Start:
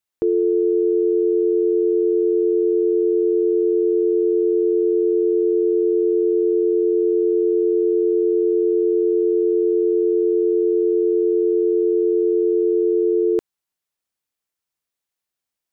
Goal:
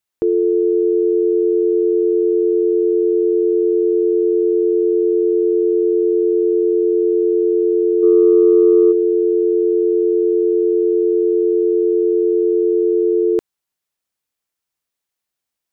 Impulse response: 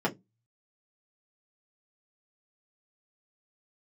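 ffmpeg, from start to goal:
-filter_complex "[0:a]asplit=3[a][b][c];[a]afade=t=out:st=8.02:d=0.02[d];[b]acontrast=26,afade=t=in:st=8.02:d=0.02,afade=t=out:st=8.91:d=0.02[e];[c]afade=t=in:st=8.91:d=0.02[f];[d][e][f]amix=inputs=3:normalize=0,volume=2.5dB"

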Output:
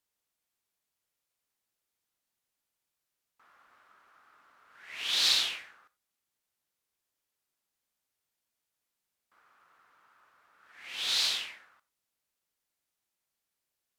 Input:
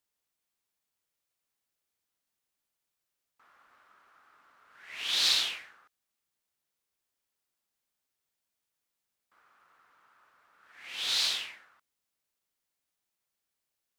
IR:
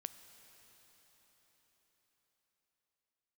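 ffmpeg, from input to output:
-filter_complex "[1:a]atrim=start_sample=2205,atrim=end_sample=3087,asetrate=30870,aresample=44100[a];[0:a][a]afir=irnorm=-1:irlink=0,volume=2.5dB"

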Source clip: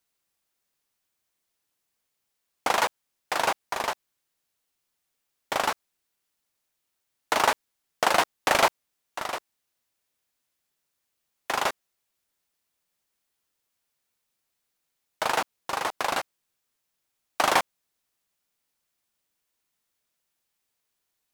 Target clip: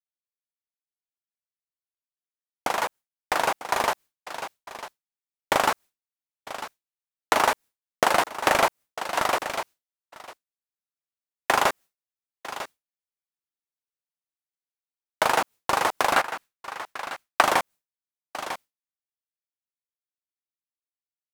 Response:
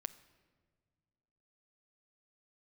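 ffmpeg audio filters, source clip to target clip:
-filter_complex "[0:a]aecho=1:1:948:0.106,acrossover=split=2400|6800[a][b][c];[a]acompressor=threshold=-29dB:ratio=4[d];[b]acompressor=threshold=-45dB:ratio=4[e];[c]acompressor=threshold=-46dB:ratio=4[f];[d][e][f]amix=inputs=3:normalize=0,asettb=1/sr,asplit=3[g][h][i];[g]atrim=end=16.134[j];[h]atrim=start=16.13:end=17.43,asetpts=PTS-STARTPTS,afade=t=in:d=0.004:c=qsin,afade=t=out:st=1.296:d=0.004:c=qsin,equalizer=f=1.6k:t=o:w=1.7:g=6[k];[i]atrim=start=17.426[l];[j][k]acrossfade=d=0.004:c1=hsin:c2=qsin[m];[m][l]acrossfade=d=0.004:c1=qsin:c2=hsin,dynaudnorm=f=390:g=17:m=14dB,agate=range=-33dB:threshold=-37dB:ratio=3:detection=peak"

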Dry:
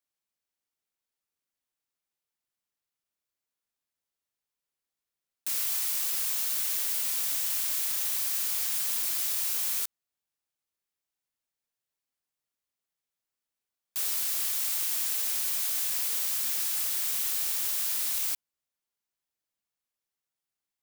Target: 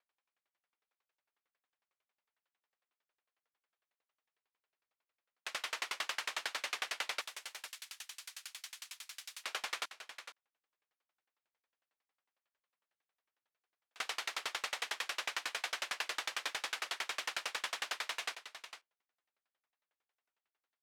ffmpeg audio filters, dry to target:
-filter_complex "[0:a]asettb=1/sr,asplit=3[a][b][c];[a]atrim=end=7.214[d];[b]atrim=start=7.21:end=9.44,asetpts=PTS-STARTPTS,afade=t=in:d=0.004:c=qsin,afade=t=out:st=2.226:d=0.004:c=qsin,aderivative[e];[c]atrim=start=9.436[f];[d][e]acrossfade=d=0.004:c1=hsin:c2=qsin[g];[g][f]acrossfade=d=0.004:c1=qsin:c2=hsin,alimiter=limit=-18dB:level=0:latency=1:release=86,highpass=520,lowpass=2.4k,aecho=1:1:466:0.282,aeval=exprs='val(0)*pow(10,-35*if(lt(mod(11*n/s,1),2*abs(11)/1000),1-mod(11*n/s,1)/(2*abs(11)/1000),(mod(11*n/s,1)-2*abs(11)/1000)/(1-2*abs(11)/1000))/20)':c=same,volume=15.5dB"

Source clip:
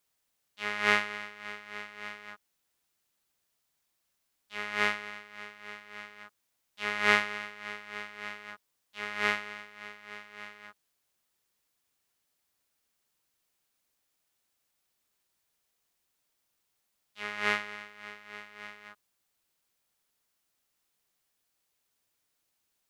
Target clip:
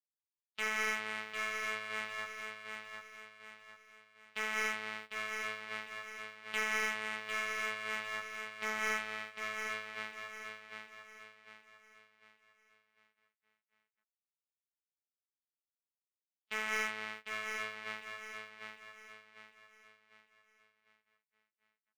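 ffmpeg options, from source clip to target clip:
-af "agate=range=-37dB:threshold=-47dB:ratio=16:detection=peak,lowpass=f=2k:p=1,alimiter=limit=-18dB:level=0:latency=1:release=446,crystalizer=i=3:c=0,asoftclip=type=hard:threshold=-28dB,aecho=1:1:782|1564|2346|3128|3910:0.531|0.212|0.0849|0.034|0.0136,asetrate=45938,aresample=44100,volume=2.5dB"

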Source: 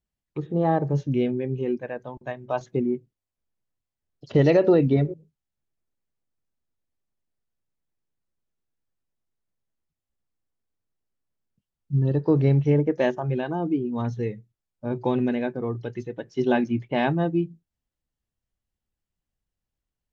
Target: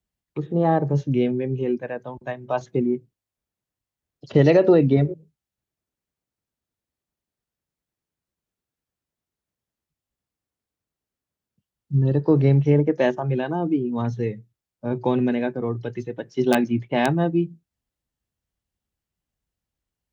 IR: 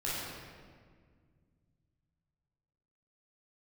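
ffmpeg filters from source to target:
-filter_complex "[0:a]acrossover=split=110|600|2000[a][b][c][d];[c]aeval=exprs='(mod(6.68*val(0)+1,2)-1)/6.68':c=same[e];[a][b][e][d]amix=inputs=4:normalize=0,highpass=41,volume=2.5dB"

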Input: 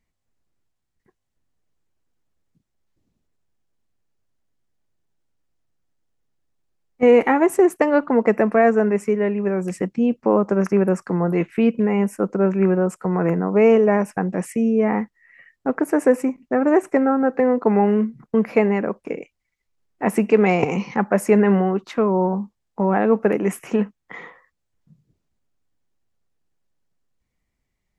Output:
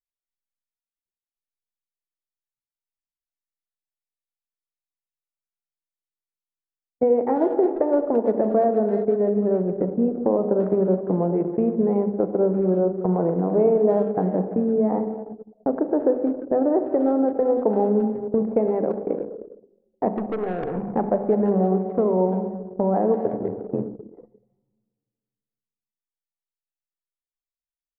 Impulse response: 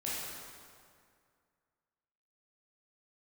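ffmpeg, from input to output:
-filter_complex "[0:a]agate=range=-28dB:threshold=-37dB:ratio=16:detection=peak,lowpass=f=650:t=q:w=1.6,bandreject=f=50:t=h:w=6,bandreject=f=100:t=h:w=6,bandreject=f=150:t=h:w=6,bandreject=f=200:t=h:w=6,bandreject=f=250:t=h:w=6,acompressor=threshold=-23dB:ratio=3,asplit=2[a][b];[b]adelay=340,highpass=300,lowpass=3.4k,asoftclip=type=hard:threshold=-21dB,volume=-16dB[c];[a][c]amix=inputs=2:normalize=0,asettb=1/sr,asplit=3[d][e][f];[d]atrim=end=20.164[g];[e]atrim=start=20.16:end=20.81,asetpts=PTS-STARTPTS,afade=t=in:d=0.004:c=qsin,afade=t=out:st=0.646:d=0.004:c=qsin,aeval=exprs='(tanh(20*val(0)+0.3)-tanh(0.3))/20':c=same[h];[f]atrim=start=20.806[i];[g][h]acrossfade=d=0.004:c1=hsin:c2=qsin[j];[j][i]acrossfade=d=0.004:c1=qsin:c2=hsin,asplit=3[k][l][m];[k]afade=t=out:st=23.24:d=0.02[n];[l]tremolo=f=85:d=0.974,afade=t=in:st=23.24:d=0.02,afade=t=out:st=24.18:d=0.02[o];[m]afade=t=in:st=24.18:d=0.02[p];[n][o][p]amix=inputs=3:normalize=0,asplit=2[q][r];[1:a]atrim=start_sample=2205,adelay=38[s];[r][s]afir=irnorm=-1:irlink=0,volume=-9.5dB[t];[q][t]amix=inputs=2:normalize=0,anlmdn=10,volume=2.5dB"

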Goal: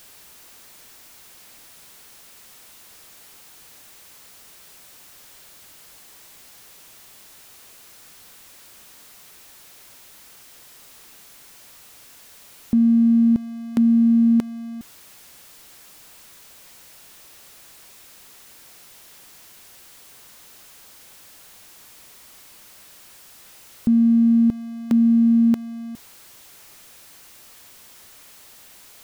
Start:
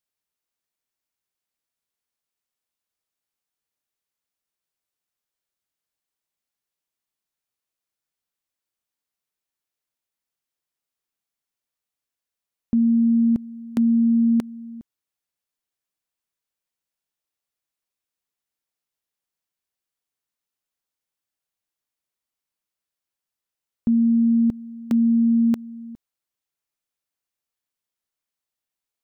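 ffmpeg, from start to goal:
-af "aeval=exprs='val(0)+0.5*0.00794*sgn(val(0))':c=same,volume=2dB"

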